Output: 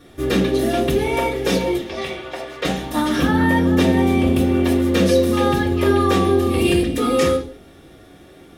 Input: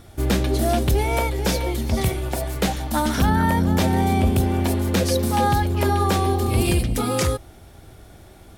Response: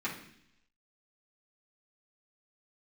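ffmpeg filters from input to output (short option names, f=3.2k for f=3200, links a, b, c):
-filter_complex "[0:a]asettb=1/sr,asplit=3[a][b][c];[a]atrim=end=1.784[d];[b]atrim=start=1.78:end=2.65,asetpts=PTS-STARTPTS,afade=t=in:d=0.004:c=qsin,afade=t=out:st=0.866:d=0.004:c=qsin,acrossover=split=480 5900:gain=0.178 1 0.141[e][f][g];[e][f][g]amix=inputs=3:normalize=0[h];[c]atrim=start=2.646[i];[d][h]acrossfade=d=0.004:c1=hsin:c2=qsin[j];[j][i]acrossfade=d=0.004:c1=qsin:c2=hsin[k];[1:a]atrim=start_sample=2205,afade=t=out:st=0.39:d=0.01,atrim=end_sample=17640,asetrate=66150,aresample=44100[l];[k][l]afir=irnorm=-1:irlink=0,volume=1.5dB"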